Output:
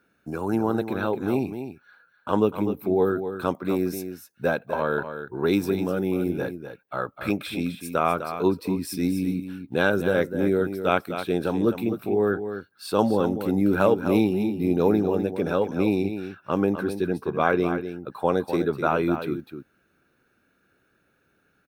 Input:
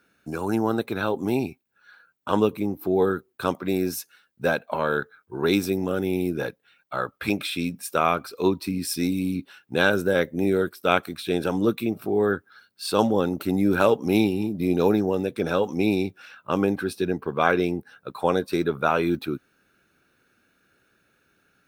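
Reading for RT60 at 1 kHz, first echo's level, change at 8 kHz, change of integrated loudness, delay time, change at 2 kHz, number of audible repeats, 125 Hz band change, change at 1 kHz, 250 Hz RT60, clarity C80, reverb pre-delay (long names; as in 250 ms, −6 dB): no reverb audible, −9.5 dB, −6.0 dB, −0.5 dB, 252 ms, −2.5 dB, 1, +0.5 dB, −1.0 dB, no reverb audible, no reverb audible, no reverb audible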